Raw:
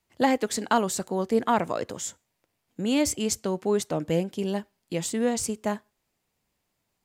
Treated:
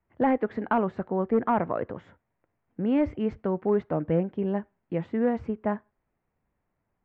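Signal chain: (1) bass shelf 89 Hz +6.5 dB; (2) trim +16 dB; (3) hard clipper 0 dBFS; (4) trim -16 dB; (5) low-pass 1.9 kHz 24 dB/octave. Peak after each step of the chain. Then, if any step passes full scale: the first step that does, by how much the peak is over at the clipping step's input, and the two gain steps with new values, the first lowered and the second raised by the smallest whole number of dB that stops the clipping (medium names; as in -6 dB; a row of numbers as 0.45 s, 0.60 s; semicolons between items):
-8.0 dBFS, +8.0 dBFS, 0.0 dBFS, -16.0 dBFS, -14.5 dBFS; step 2, 8.0 dB; step 2 +8 dB, step 4 -8 dB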